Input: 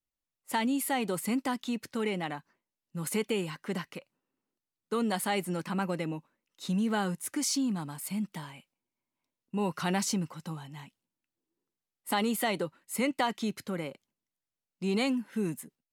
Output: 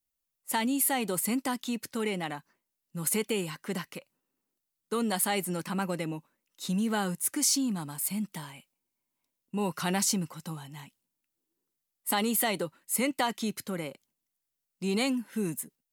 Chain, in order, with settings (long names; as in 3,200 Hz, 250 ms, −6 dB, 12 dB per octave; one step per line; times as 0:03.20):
high-shelf EQ 6,900 Hz +11.5 dB